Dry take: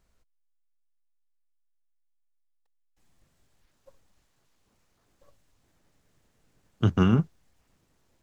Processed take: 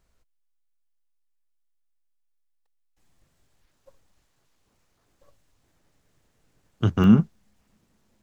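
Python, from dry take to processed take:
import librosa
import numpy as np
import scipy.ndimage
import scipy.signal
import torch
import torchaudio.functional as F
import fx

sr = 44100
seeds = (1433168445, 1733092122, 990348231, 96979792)

y = fx.peak_eq(x, sr, hz=210.0, db=fx.steps((0.0, -2.5), (7.04, 12.5)), octaves=0.26)
y = y * 10.0 ** (1.0 / 20.0)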